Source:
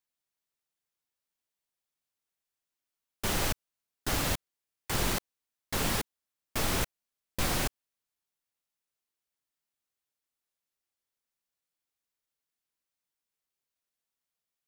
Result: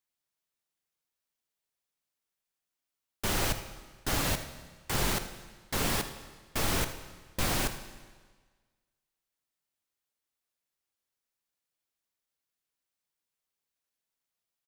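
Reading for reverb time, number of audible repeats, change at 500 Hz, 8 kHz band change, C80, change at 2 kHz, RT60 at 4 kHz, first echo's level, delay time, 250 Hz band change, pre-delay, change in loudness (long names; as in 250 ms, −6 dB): 1.5 s, 1, +0.5 dB, +0.5 dB, 12.5 dB, +0.5 dB, 1.4 s, −15.0 dB, 79 ms, +0.5 dB, 28 ms, +0.5 dB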